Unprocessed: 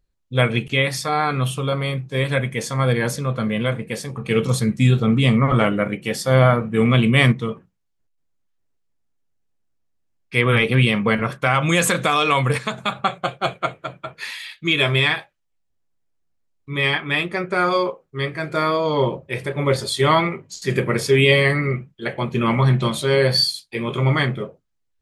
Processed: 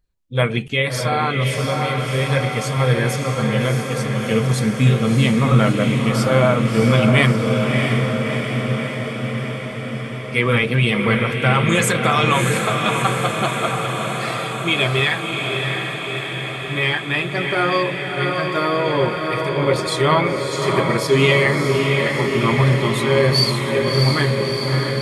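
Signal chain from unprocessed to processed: bin magnitudes rounded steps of 15 dB; diffused feedback echo 0.654 s, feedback 72%, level -4 dB

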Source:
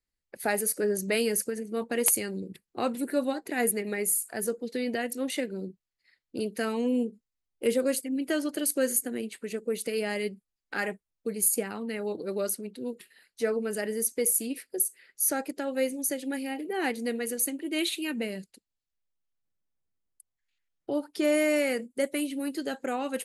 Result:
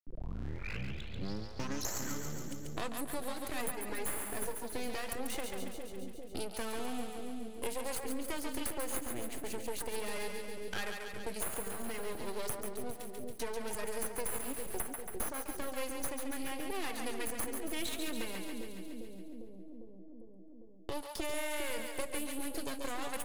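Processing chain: tape start at the beginning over 2.97 s; gate -47 dBFS, range -51 dB; high shelf 7800 Hz +7 dB; compressor, threshold -25 dBFS, peak gain reduction 10 dB; half-wave rectifier; on a send: split-band echo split 520 Hz, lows 0.401 s, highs 0.139 s, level -5.5 dB; on the sum: three-band squash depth 70%; gain -4.5 dB

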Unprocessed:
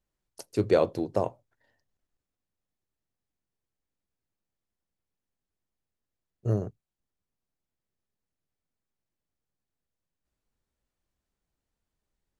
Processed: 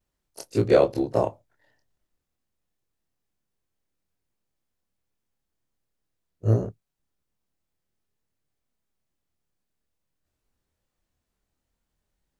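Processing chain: short-time reversal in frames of 54 ms; gain +7.5 dB

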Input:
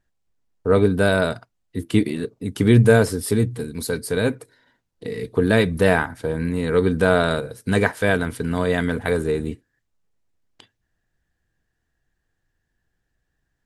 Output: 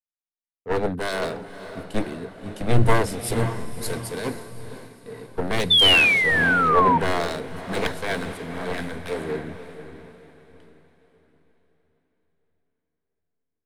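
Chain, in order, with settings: one-sided fold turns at -17.5 dBFS; diffused feedback echo 0.534 s, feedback 63%, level -6 dB; painted sound fall, 5.7–6.98, 910–3600 Hz -17 dBFS; three-band expander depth 100%; gain -5.5 dB

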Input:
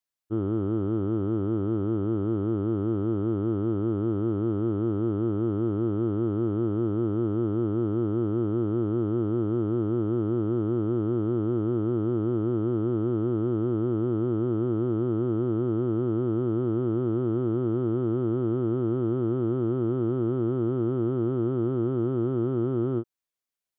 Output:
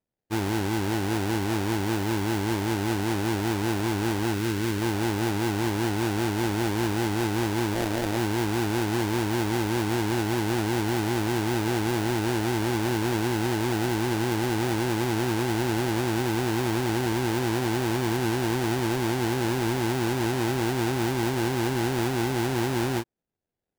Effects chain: 7.74–8.17 self-modulated delay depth 0.76 ms; sample-rate reducer 1200 Hz, jitter 20%; 4.34–4.82 bell 750 Hz -10 dB 0.62 oct

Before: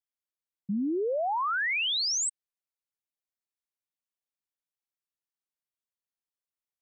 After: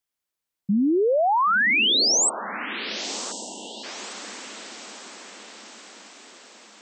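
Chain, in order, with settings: diffused feedback echo 1.054 s, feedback 55%, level -12 dB; spectral delete 3.31–3.84, 1000–2700 Hz; gain +8.5 dB

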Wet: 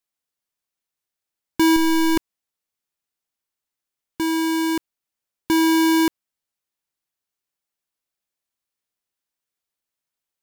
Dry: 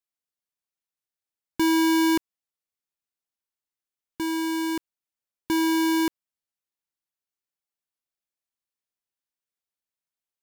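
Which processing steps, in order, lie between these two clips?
1.76–2.17 half-wave gain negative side -12 dB; gain +5.5 dB

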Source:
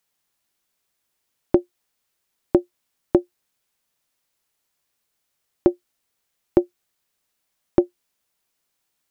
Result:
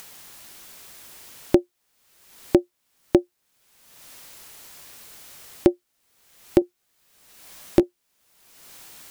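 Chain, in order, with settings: upward compressor, threshold -21 dBFS; 6.6–7.83 doubler 15 ms -8 dB

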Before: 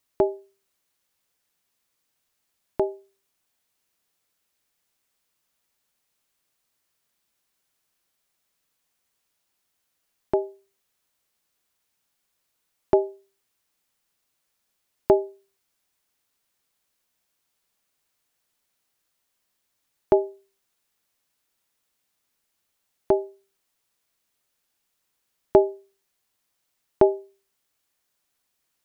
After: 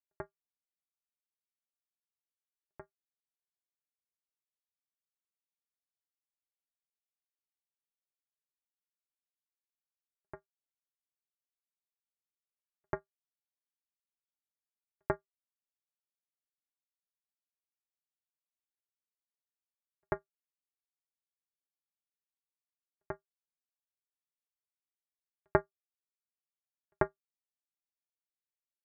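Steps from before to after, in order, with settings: pre-echo 92 ms -16.5 dB; expander -45 dBFS; power-law curve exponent 3; gain -4.5 dB

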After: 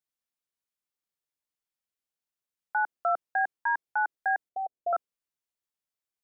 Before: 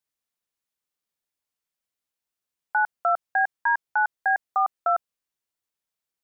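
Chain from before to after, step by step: dynamic EQ 340 Hz, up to +8 dB, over -42 dBFS, Q 0.89; 4.49–4.93 steep low-pass 760 Hz 96 dB/oct; gain -6 dB

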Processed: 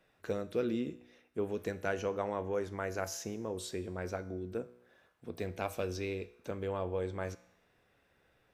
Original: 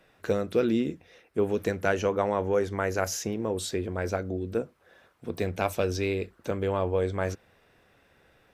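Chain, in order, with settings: resonator 61 Hz, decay 0.78 s, harmonics all, mix 50%; gain -4 dB

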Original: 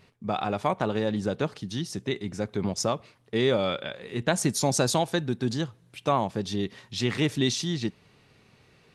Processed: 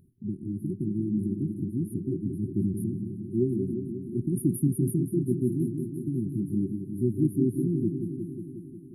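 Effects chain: repeats that get brighter 0.18 s, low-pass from 400 Hz, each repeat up 2 oct, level -6 dB; FFT band-reject 390–9500 Hz; gain +1.5 dB

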